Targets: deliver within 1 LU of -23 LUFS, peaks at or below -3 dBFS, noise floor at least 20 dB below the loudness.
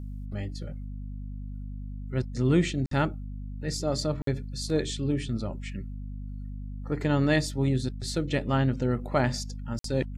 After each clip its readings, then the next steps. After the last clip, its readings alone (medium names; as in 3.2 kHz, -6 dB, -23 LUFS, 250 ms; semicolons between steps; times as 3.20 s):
dropouts 3; longest dropout 53 ms; hum 50 Hz; highest harmonic 250 Hz; hum level -34 dBFS; loudness -29.0 LUFS; peak level -11.0 dBFS; loudness target -23.0 LUFS
-> interpolate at 2.86/4.22/9.79 s, 53 ms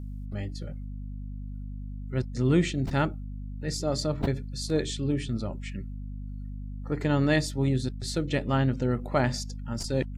dropouts 0; hum 50 Hz; highest harmonic 250 Hz; hum level -34 dBFS
-> de-hum 50 Hz, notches 5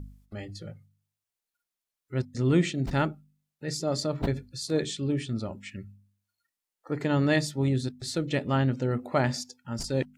hum not found; loudness -29.0 LUFS; peak level -11.5 dBFS; loudness target -23.0 LUFS
-> trim +6 dB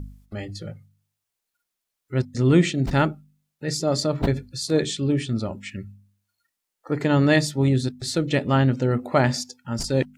loudness -23.0 LUFS; peak level -5.5 dBFS; noise floor -83 dBFS